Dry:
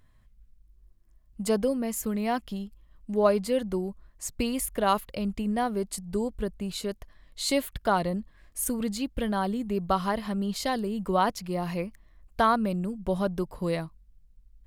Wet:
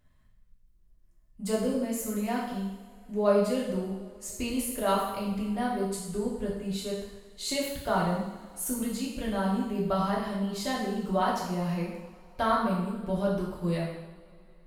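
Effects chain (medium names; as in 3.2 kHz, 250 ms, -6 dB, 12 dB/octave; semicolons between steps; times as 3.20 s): two-slope reverb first 0.86 s, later 3.3 s, from -20 dB, DRR -5 dB; trim -8 dB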